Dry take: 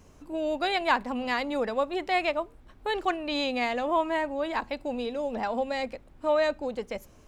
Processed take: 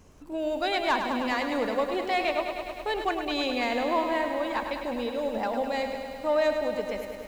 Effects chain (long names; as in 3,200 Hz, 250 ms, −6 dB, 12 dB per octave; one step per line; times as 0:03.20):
soft clipping −16.5 dBFS, distortion −21 dB
feedback echo at a low word length 103 ms, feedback 80%, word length 9 bits, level −7.5 dB